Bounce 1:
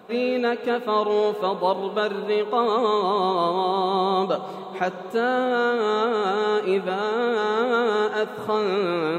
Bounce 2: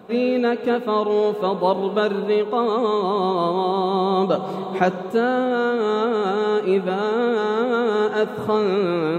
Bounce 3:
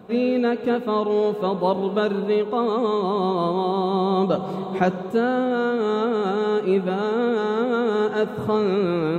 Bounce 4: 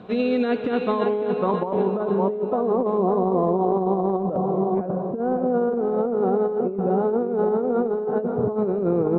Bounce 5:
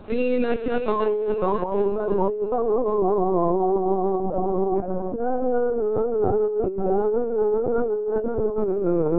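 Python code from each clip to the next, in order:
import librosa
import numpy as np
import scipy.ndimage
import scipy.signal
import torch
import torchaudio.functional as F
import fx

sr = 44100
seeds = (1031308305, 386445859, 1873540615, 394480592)

y1 = fx.low_shelf(x, sr, hz=380.0, db=9.0)
y1 = fx.rider(y1, sr, range_db=5, speed_s=0.5)
y1 = F.gain(torch.from_numpy(y1), -1.0).numpy()
y2 = fx.low_shelf(y1, sr, hz=180.0, db=9.5)
y2 = F.gain(torch.from_numpy(y2), -3.0).numpy()
y3 = fx.filter_sweep_lowpass(y2, sr, from_hz=4000.0, to_hz=690.0, start_s=0.44, end_s=2.26, q=1.2)
y3 = fx.echo_feedback(y3, sr, ms=553, feedback_pct=41, wet_db=-9)
y3 = fx.over_compress(y3, sr, threshold_db=-21.0, ratio=-0.5)
y4 = fx.lpc_vocoder(y3, sr, seeds[0], excitation='pitch_kept', order=16)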